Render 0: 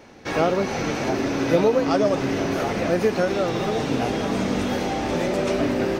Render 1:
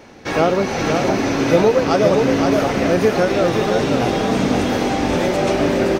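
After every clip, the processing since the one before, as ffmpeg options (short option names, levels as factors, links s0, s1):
-af "aecho=1:1:521:0.596,volume=1.68"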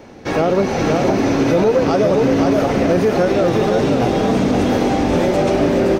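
-filter_complex "[0:a]acrossover=split=840|5500[s0][s1][s2];[s0]acontrast=39[s3];[s3][s1][s2]amix=inputs=3:normalize=0,alimiter=level_in=1.68:limit=0.891:release=50:level=0:latency=1,volume=0.501"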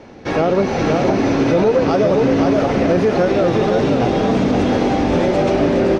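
-af "lowpass=5700"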